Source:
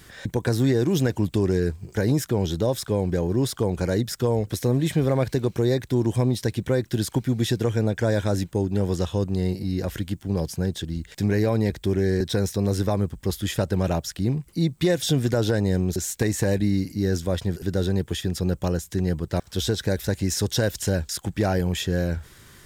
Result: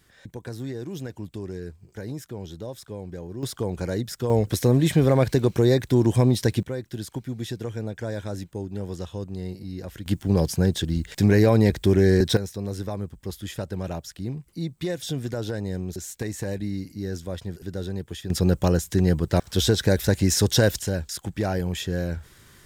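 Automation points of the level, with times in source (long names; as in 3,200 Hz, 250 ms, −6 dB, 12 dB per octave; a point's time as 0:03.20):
−12.5 dB
from 0:03.43 −4 dB
from 0:04.30 +3 dB
from 0:06.63 −8.5 dB
from 0:10.06 +4.5 dB
from 0:12.37 −7.5 dB
from 0:18.30 +4 dB
from 0:20.79 −3 dB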